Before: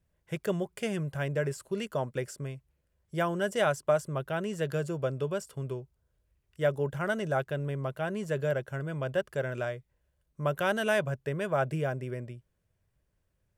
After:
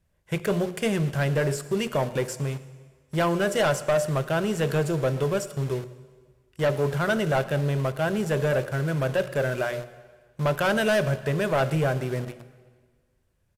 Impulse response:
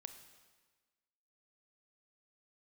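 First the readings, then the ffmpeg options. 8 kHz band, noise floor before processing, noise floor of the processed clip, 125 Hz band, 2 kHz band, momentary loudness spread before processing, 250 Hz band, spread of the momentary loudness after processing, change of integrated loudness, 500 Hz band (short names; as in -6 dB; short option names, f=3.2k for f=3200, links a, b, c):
+9.0 dB, -77 dBFS, -69 dBFS, +7.5 dB, +5.5 dB, 10 LU, +7.5 dB, 8 LU, +6.0 dB, +5.5 dB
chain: -filter_complex "[0:a]bandreject=f=60:t=h:w=6,bandreject=f=120:t=h:w=6,bandreject=f=180:t=h:w=6,bandreject=f=240:t=h:w=6,bandreject=f=300:t=h:w=6,bandreject=f=360:t=h:w=6,bandreject=f=420:t=h:w=6,bandreject=f=480:t=h:w=6,bandreject=f=540:t=h:w=6,bandreject=f=600:t=h:w=6,asplit=2[a][b];[b]acrusher=bits=6:mix=0:aa=0.000001,volume=-4.5dB[c];[a][c]amix=inputs=2:normalize=0,asoftclip=type=tanh:threshold=-23dB,aecho=1:1:113:0.075,asplit=2[d][e];[1:a]atrim=start_sample=2205,asetrate=38808,aresample=44100[f];[e][f]afir=irnorm=-1:irlink=0,volume=4dB[g];[d][g]amix=inputs=2:normalize=0" -ar 32000 -c:a aac -b:a 96k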